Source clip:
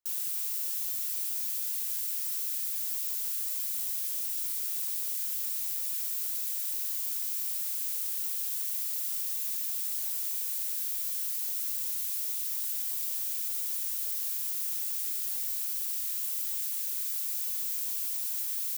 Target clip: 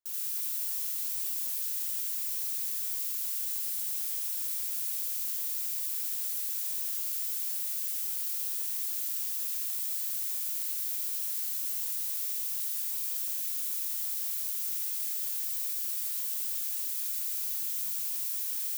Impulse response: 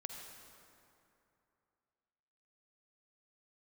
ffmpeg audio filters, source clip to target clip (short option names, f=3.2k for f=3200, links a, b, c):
-filter_complex "[0:a]asplit=2[a][b];[1:a]atrim=start_sample=2205,adelay=82[c];[b][c]afir=irnorm=-1:irlink=0,volume=4dB[d];[a][d]amix=inputs=2:normalize=0,volume=-4dB"